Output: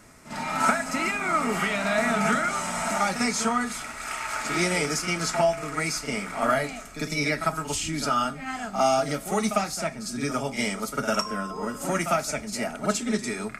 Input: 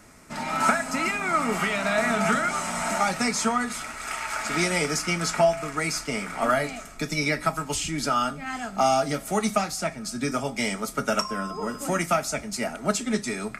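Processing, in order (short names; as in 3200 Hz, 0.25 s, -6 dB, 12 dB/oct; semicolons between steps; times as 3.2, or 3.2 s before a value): reverse echo 50 ms -9.5 dB; gain -1 dB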